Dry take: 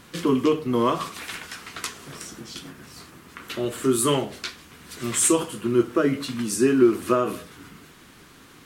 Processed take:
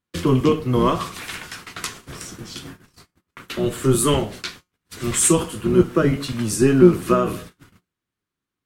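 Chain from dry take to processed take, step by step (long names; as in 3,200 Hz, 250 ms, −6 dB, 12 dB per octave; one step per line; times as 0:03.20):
sub-octave generator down 1 octave, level −1 dB
noise gate −40 dBFS, range −39 dB
tuned comb filter 180 Hz, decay 0.22 s, harmonics all, mix 40%
level +6 dB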